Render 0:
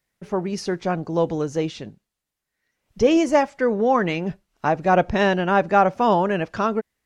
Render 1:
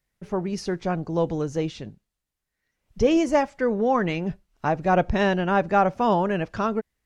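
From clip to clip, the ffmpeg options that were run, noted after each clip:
-af "lowshelf=f=100:g=11.5,volume=0.668"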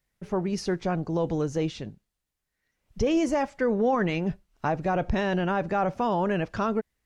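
-af "alimiter=limit=0.15:level=0:latency=1:release=17"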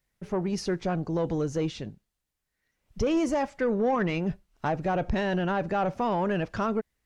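-af "asoftclip=type=tanh:threshold=0.133"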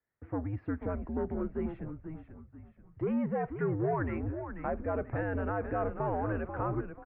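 -filter_complex "[0:a]highpass=f=170:t=q:w=0.5412,highpass=f=170:t=q:w=1.307,lowpass=f=2100:t=q:w=0.5176,lowpass=f=2100:t=q:w=0.7071,lowpass=f=2100:t=q:w=1.932,afreqshift=-94,asplit=5[s0][s1][s2][s3][s4];[s1]adelay=487,afreqshift=-60,volume=0.376[s5];[s2]adelay=974,afreqshift=-120,volume=0.146[s6];[s3]adelay=1461,afreqshift=-180,volume=0.0569[s7];[s4]adelay=1948,afreqshift=-240,volume=0.0224[s8];[s0][s5][s6][s7][s8]amix=inputs=5:normalize=0,volume=0.531"

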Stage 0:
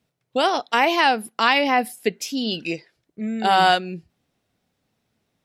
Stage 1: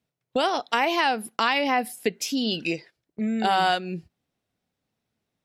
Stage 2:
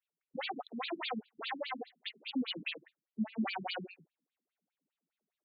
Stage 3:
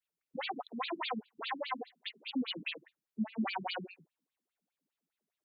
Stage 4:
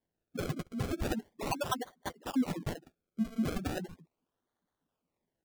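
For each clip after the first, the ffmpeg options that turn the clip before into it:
-af "agate=range=0.282:threshold=0.00708:ratio=16:detection=peak,acompressor=threshold=0.0398:ratio=2,volume=1.41"
-filter_complex "[0:a]asplit=2[s0][s1];[s1]adelay=23,volume=0.237[s2];[s0][s2]amix=inputs=2:normalize=0,aeval=exprs='0.0794*(abs(mod(val(0)/0.0794+3,4)-2)-1)':c=same,afftfilt=real='re*between(b*sr/1024,200*pow(3400/200,0.5+0.5*sin(2*PI*4.9*pts/sr))/1.41,200*pow(3400/200,0.5+0.5*sin(2*PI*4.9*pts/sr))*1.41)':imag='im*between(b*sr/1024,200*pow(3400/200,0.5+0.5*sin(2*PI*4.9*pts/sr))/1.41,200*pow(3400/200,0.5+0.5*sin(2*PI*4.9*pts/sr))*1.41)':win_size=1024:overlap=0.75,volume=0.668"
-af "adynamicequalizer=threshold=0.00112:dfrequency=1000:dqfactor=4.8:tfrequency=1000:tqfactor=4.8:attack=5:release=100:ratio=0.375:range=4:mode=boostabove:tftype=bell"
-filter_complex "[0:a]acrossover=split=390[s0][s1];[s1]acrusher=samples=33:mix=1:aa=0.000001:lfo=1:lforange=33:lforate=0.38[s2];[s0][s2]amix=inputs=2:normalize=0,asplit=2[s3][s4];[s4]adelay=12,volume=0.224[s5];[s3][s5]amix=inputs=2:normalize=0,volume=1.58"

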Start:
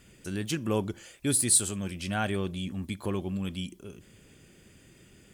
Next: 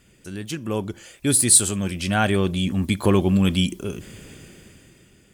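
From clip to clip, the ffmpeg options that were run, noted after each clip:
-af "dynaudnorm=f=200:g=11:m=6.31"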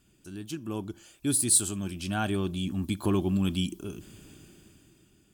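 -af "equalizer=f=315:t=o:w=0.33:g=6,equalizer=f=500:t=o:w=0.33:g=-10,equalizer=f=2000:t=o:w=0.33:g=-11,equalizer=f=16000:t=o:w=0.33:g=8,volume=0.376"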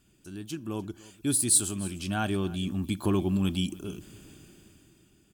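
-af "aecho=1:1:299:0.1"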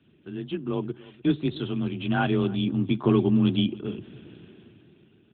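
-af "afreqshift=25,volume=1.88" -ar 8000 -c:a libopencore_amrnb -b:a 12200

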